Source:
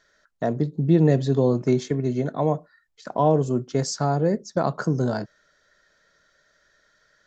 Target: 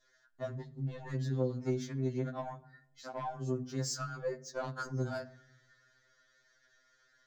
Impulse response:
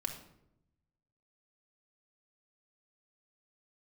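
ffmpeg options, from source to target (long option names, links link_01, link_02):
-filter_complex "[0:a]acompressor=threshold=-31dB:ratio=2,asplit=2[link_01][link_02];[1:a]atrim=start_sample=2205[link_03];[link_02][link_03]afir=irnorm=-1:irlink=0,volume=-11dB[link_04];[link_01][link_04]amix=inputs=2:normalize=0,adynamicequalizer=threshold=0.00316:dfrequency=1600:dqfactor=1.6:tfrequency=1600:tqfactor=1.6:attack=5:release=100:ratio=0.375:range=3.5:mode=boostabove:tftype=bell,adynamicsmooth=sensitivity=7:basefreq=6600,asoftclip=type=tanh:threshold=-16.5dB,highshelf=frequency=4400:gain=10.5,bandreject=frequency=50:width_type=h:width=6,bandreject=frequency=100:width_type=h:width=6,bandreject=frequency=150:width_type=h:width=6,bandreject=frequency=200:width_type=h:width=6,bandreject=frequency=250:width_type=h:width=6,bandreject=frequency=300:width_type=h:width=6,bandreject=frequency=350:width_type=h:width=6,afftfilt=real='re*2.45*eq(mod(b,6),0)':imag='im*2.45*eq(mod(b,6),0)':win_size=2048:overlap=0.75,volume=-7.5dB"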